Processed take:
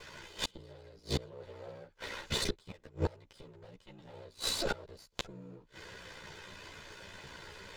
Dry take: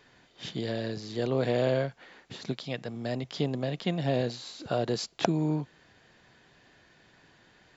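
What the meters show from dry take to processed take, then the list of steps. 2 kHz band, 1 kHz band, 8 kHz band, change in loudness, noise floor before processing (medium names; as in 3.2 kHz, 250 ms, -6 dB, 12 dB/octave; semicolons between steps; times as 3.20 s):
-3.0 dB, -9.0 dB, no reading, -8.5 dB, -61 dBFS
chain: comb filter that takes the minimum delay 2 ms; ring modulator 30 Hz; inverted gate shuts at -31 dBFS, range -33 dB; three-phase chorus; trim +18 dB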